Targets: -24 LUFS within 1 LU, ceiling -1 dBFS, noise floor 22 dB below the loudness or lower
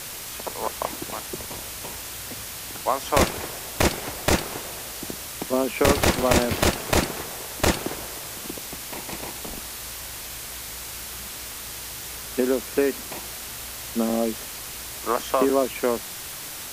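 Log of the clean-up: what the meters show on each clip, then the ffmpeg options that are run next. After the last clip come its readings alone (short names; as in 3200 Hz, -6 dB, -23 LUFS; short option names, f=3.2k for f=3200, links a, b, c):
noise floor -36 dBFS; noise floor target -49 dBFS; loudness -26.5 LUFS; peak -4.0 dBFS; loudness target -24.0 LUFS
-> -af "afftdn=nr=13:nf=-36"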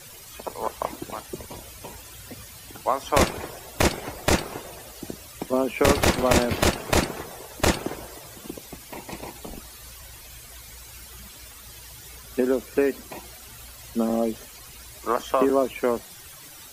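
noise floor -45 dBFS; noise floor target -47 dBFS
-> -af "afftdn=nr=6:nf=-45"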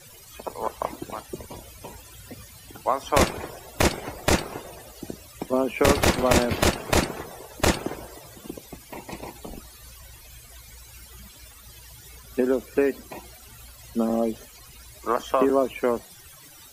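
noise floor -48 dBFS; loudness -25.0 LUFS; peak -4.5 dBFS; loudness target -24.0 LUFS
-> -af "volume=1dB"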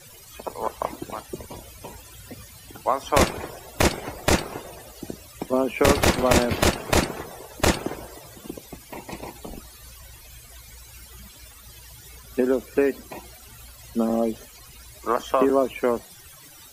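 loudness -24.0 LUFS; peak -3.5 dBFS; noise floor -47 dBFS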